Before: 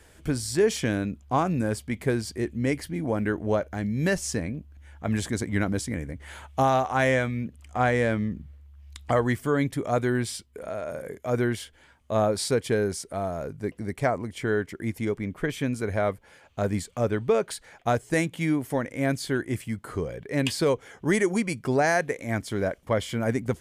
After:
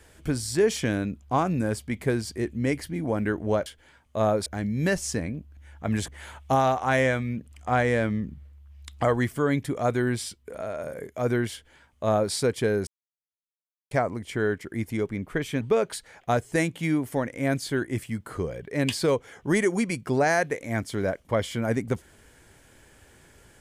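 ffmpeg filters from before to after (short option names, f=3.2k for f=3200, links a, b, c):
-filter_complex "[0:a]asplit=7[a][b][c][d][e][f][g];[a]atrim=end=3.662[h];[b]atrim=start=11.608:end=12.412[i];[c]atrim=start=3.658:end=5.282[j];[d]atrim=start=6.158:end=12.95,asetpts=PTS-STARTPTS,afade=t=out:st=6.788:d=0.004:c=hsin[k];[e]atrim=start=12.95:end=13.99,asetpts=PTS-STARTPTS,volume=0[l];[f]atrim=start=13.99:end=15.692,asetpts=PTS-STARTPTS,afade=t=in:d=0.004:c=hsin[m];[g]atrim=start=17.188[n];[h][i]acrossfade=d=0.004:c1=hsin:c2=hsin[o];[o][j]acrossfade=d=0.004:c1=hsin:c2=hsin[p];[k][l][m]concat=n=3:v=0:a=1[q];[p][q]acrossfade=d=0.004:c1=hsin:c2=hsin[r];[r][n]acrossfade=d=0.004:c1=hsin:c2=hsin"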